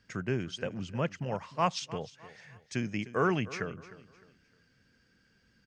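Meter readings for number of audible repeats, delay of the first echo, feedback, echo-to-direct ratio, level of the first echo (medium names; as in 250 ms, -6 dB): 2, 305 ms, 33%, -16.5 dB, -17.0 dB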